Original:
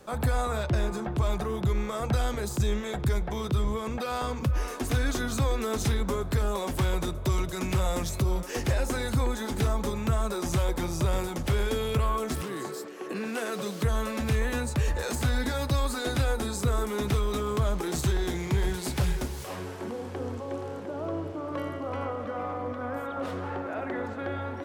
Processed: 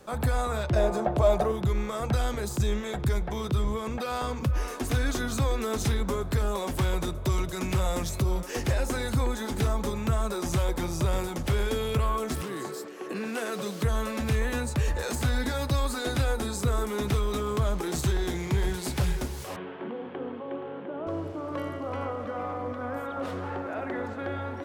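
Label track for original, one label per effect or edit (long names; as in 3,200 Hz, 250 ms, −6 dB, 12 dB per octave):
0.760000	1.520000	parametric band 620 Hz +14.5 dB 0.82 octaves
19.560000	21.070000	Chebyshev band-pass filter 130–3,300 Hz, order 4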